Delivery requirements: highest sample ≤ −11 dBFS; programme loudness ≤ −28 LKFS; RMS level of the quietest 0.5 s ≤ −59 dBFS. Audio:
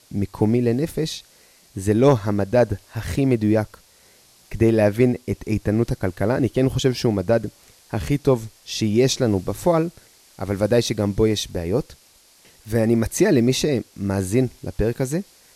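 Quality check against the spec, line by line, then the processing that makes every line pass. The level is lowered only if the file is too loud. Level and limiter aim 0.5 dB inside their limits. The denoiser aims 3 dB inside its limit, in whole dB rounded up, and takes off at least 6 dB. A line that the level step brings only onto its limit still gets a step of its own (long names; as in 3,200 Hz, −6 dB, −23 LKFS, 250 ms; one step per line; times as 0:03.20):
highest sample −5.0 dBFS: out of spec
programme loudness −21.0 LKFS: out of spec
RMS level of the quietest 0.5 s −54 dBFS: out of spec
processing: level −7.5 dB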